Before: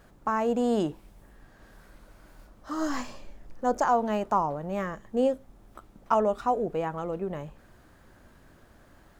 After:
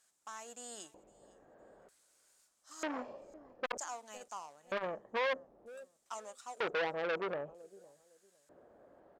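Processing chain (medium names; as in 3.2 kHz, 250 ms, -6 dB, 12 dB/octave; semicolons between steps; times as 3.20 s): peaking EQ 740 Hz +2 dB 0.22 oct; in parallel at -7 dB: hysteresis with a dead band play -24 dBFS; on the sum: LFO band-pass square 0.53 Hz 520–7800 Hz; hard clipper -27 dBFS, distortion -7 dB; on a send: feedback delay 508 ms, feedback 23%, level -24 dB; on the sum: transformer saturation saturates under 1.5 kHz; trim +3.5 dB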